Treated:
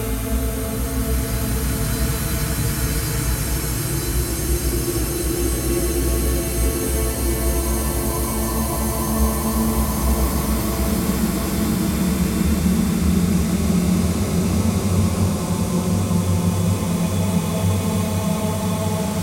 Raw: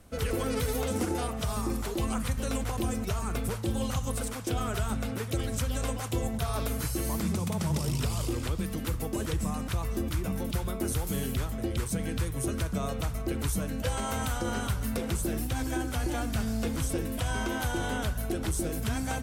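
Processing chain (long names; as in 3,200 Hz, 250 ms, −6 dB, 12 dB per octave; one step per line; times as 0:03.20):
extreme stretch with random phases 23×, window 0.25 s, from 0:06.73
delay that swaps between a low-pass and a high-pass 567 ms, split 870 Hz, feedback 81%, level −5.5 dB
level +8.5 dB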